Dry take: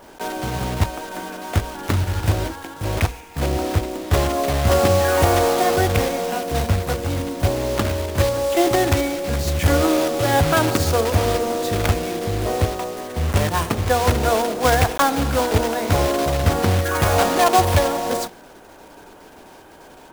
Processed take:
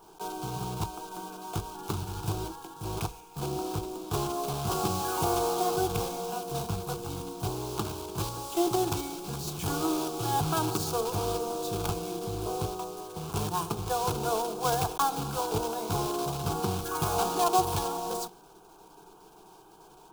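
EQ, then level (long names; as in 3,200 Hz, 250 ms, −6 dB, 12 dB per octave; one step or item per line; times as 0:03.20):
phaser with its sweep stopped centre 380 Hz, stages 8
−7.0 dB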